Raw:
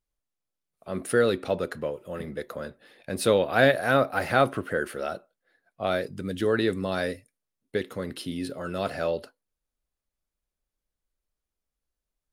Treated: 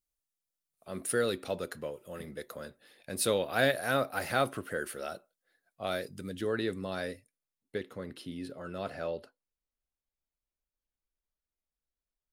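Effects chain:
high-shelf EQ 4,300 Hz +12 dB, from 0:06.29 +2.5 dB, from 0:07.78 −4.5 dB
level −8 dB

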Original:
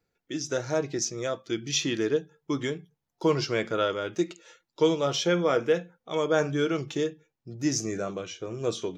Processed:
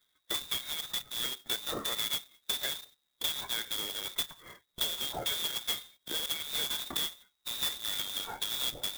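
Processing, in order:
dynamic equaliser 110 Hz, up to −4 dB, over −47 dBFS, Q 1.9
downward compressor 10 to 1, threshold −35 dBFS, peak gain reduction 18 dB
linear-phase brick-wall band-stop 590–1,500 Hz
voice inversion scrambler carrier 3,800 Hz
converter with an unsteady clock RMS 0.033 ms
level +5 dB

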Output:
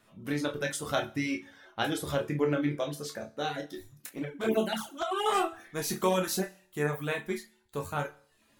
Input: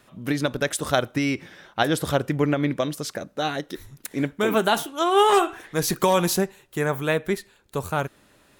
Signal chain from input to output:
resonators tuned to a chord D2 major, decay 0.55 s
0:04.09–0:05.26: flanger swept by the level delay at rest 12 ms, full sweep at −28.5 dBFS
reverb reduction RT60 0.54 s
level +8 dB

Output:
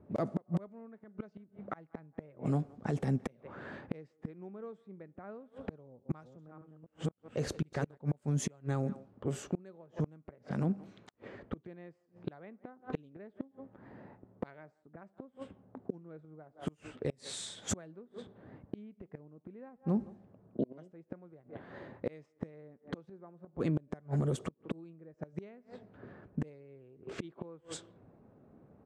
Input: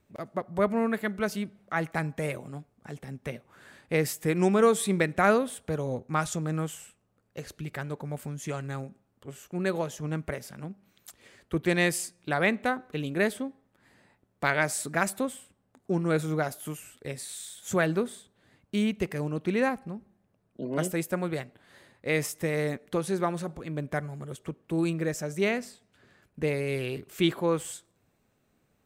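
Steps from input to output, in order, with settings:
0:05.86–0:07.98: delay that plays each chunk backwards 251 ms, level −2.5 dB
parametric band 2,400 Hz −11 dB 2.5 octaves
far-end echo of a speakerphone 170 ms, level −24 dB
gate with flip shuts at −27 dBFS, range −36 dB
high-pass filter 130 Hz 6 dB per octave
high-frequency loss of the air 91 metres
brickwall limiter −37.5 dBFS, peak gain reduction 11.5 dB
low-pass that shuts in the quiet parts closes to 1,100 Hz, open at −46.5 dBFS
level +14.5 dB

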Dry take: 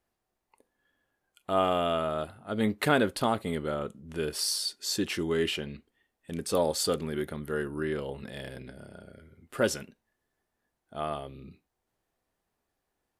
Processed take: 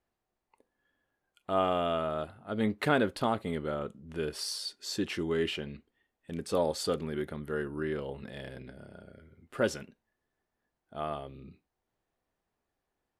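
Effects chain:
low-pass filter 4,000 Hz 6 dB per octave
level −2 dB

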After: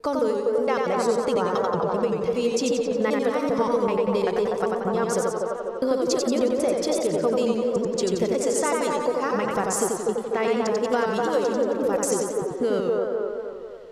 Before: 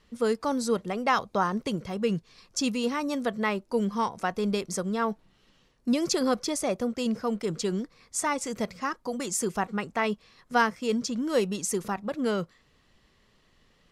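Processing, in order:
slices reordered back to front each 194 ms, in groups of 3
parametric band 480 Hz +9.5 dB 0.64 octaves
delay with a band-pass on its return 245 ms, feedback 49%, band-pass 690 Hz, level −3 dB
downward compressor, threshold −24 dBFS, peak gain reduction 12.5 dB
feedback echo with a swinging delay time 90 ms, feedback 55%, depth 102 cents, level −3.5 dB
level +3 dB

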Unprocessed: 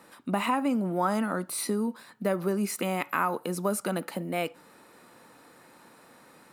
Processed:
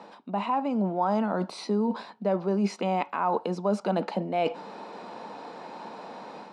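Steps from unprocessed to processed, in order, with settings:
reversed playback
downward compressor 6 to 1, threshold −38 dBFS, peak gain reduction 15.5 dB
reversed playback
loudspeaker in its box 190–5,300 Hz, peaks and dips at 200 Hz +8 dB, 520 Hz −7 dB, 1,200 Hz −9 dB, 1,900 Hz −5 dB
automatic gain control gain up to 5 dB
flat-topped bell 710 Hz +10 dB
level +5 dB

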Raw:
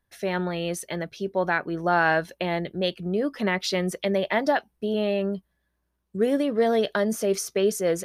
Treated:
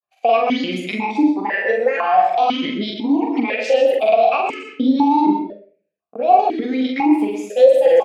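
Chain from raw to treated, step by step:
pitch shifter swept by a sawtooth +8 semitones, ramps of 657 ms
noise gate −46 dBFS, range −21 dB
low-shelf EQ 350 Hz −6 dB
downward compressor 5 to 1, threshold −31 dBFS, peak gain reduction 12.5 dB
granular cloud, spray 33 ms, pitch spread up and down by 0 semitones
double-tracking delay 43 ms −4 dB
single-tap delay 71 ms −16.5 dB
on a send at −7 dB: convolution reverb RT60 0.45 s, pre-delay 109 ms
on the sum: boost into a limiter +25 dB
formant filter that steps through the vowels 2 Hz
level +2.5 dB

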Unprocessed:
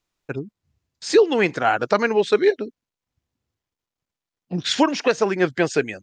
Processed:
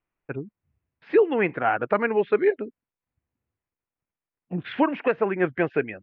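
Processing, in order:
Butterworth low-pass 2,600 Hz 36 dB per octave
level −3.5 dB

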